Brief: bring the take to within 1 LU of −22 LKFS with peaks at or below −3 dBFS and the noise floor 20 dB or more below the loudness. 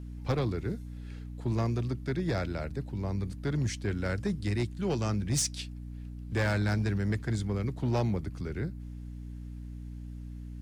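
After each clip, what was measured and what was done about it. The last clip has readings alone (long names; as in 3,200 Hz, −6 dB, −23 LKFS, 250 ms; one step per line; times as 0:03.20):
share of clipped samples 1.4%; peaks flattened at −23.0 dBFS; mains hum 60 Hz; hum harmonics up to 300 Hz; level of the hum −39 dBFS; integrated loudness −32.0 LKFS; sample peak −23.0 dBFS; target loudness −22.0 LKFS
→ clipped peaks rebuilt −23 dBFS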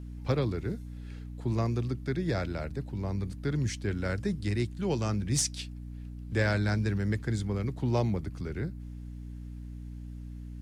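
share of clipped samples 0.0%; mains hum 60 Hz; hum harmonics up to 300 Hz; level of the hum −39 dBFS
→ mains-hum notches 60/120/180/240/300 Hz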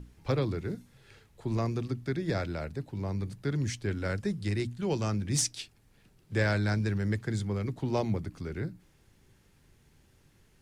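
mains hum none found; integrated loudness −32.0 LKFS; sample peak −15.0 dBFS; target loudness −22.0 LKFS
→ level +10 dB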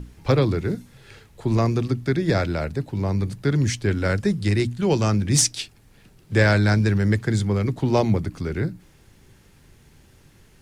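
integrated loudness −22.0 LKFS; sample peak −5.0 dBFS; background noise floor −54 dBFS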